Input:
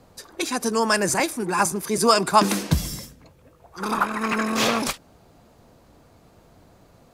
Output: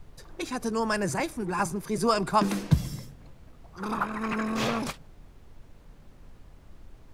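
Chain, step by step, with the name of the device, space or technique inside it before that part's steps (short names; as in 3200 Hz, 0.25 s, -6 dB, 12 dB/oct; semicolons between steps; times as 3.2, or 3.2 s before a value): gate with hold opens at -41 dBFS; car interior (bell 130 Hz +9 dB 0.93 oct; high shelf 3900 Hz -7.5 dB; brown noise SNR 17 dB); gain -6.5 dB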